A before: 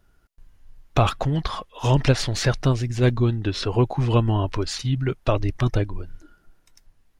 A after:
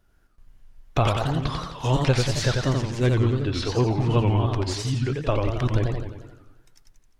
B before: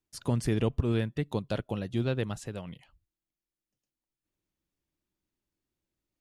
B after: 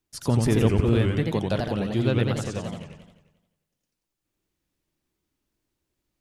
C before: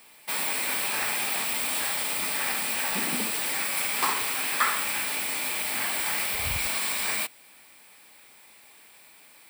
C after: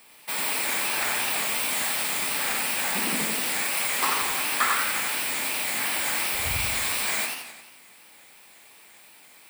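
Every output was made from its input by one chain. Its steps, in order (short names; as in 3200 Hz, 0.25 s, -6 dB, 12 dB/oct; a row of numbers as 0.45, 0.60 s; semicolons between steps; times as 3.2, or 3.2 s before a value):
warbling echo 88 ms, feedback 57%, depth 218 cents, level -3.5 dB; match loudness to -24 LUFS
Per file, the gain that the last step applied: -3.0, +5.5, 0.0 dB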